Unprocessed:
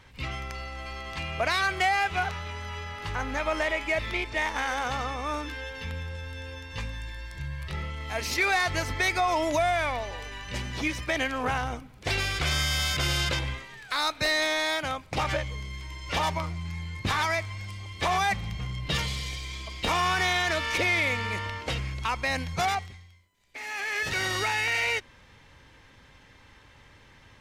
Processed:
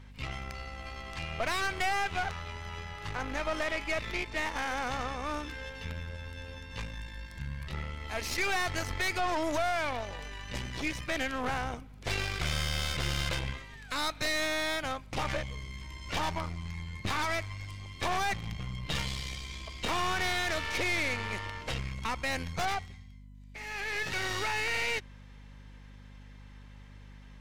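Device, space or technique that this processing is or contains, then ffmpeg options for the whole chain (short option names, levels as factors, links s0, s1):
valve amplifier with mains hum: -af "aeval=exprs='(tanh(20*val(0)+0.8)-tanh(0.8))/20':c=same,aeval=exprs='val(0)+0.00355*(sin(2*PI*50*n/s)+sin(2*PI*2*50*n/s)/2+sin(2*PI*3*50*n/s)/3+sin(2*PI*4*50*n/s)/4+sin(2*PI*5*50*n/s)/5)':c=same"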